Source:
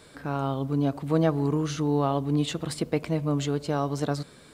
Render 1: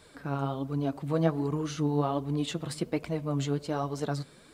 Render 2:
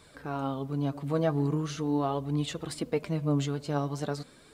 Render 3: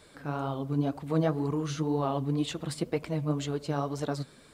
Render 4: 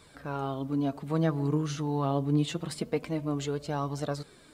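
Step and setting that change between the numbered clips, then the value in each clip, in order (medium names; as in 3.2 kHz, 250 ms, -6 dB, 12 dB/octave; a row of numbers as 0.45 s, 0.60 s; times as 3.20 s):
flange, rate: 1.3 Hz, 0.42 Hz, 2 Hz, 0.26 Hz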